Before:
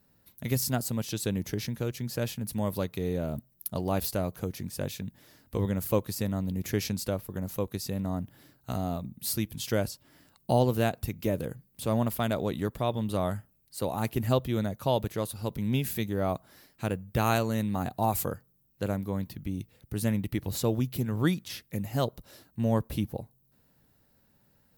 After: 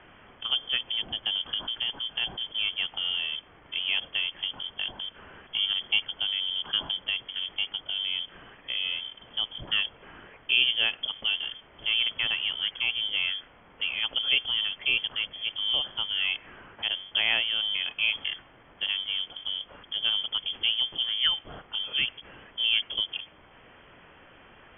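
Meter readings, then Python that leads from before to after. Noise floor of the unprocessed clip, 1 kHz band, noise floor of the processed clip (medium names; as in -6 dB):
-67 dBFS, -10.5 dB, -55 dBFS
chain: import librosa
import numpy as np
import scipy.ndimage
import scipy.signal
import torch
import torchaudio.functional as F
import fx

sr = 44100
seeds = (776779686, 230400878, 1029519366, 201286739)

y = x + 0.5 * 10.0 ** (-25.0 / 20.0) * np.diff(np.sign(x), prepend=np.sign(x[:1]))
y = fx.freq_invert(y, sr, carrier_hz=3300)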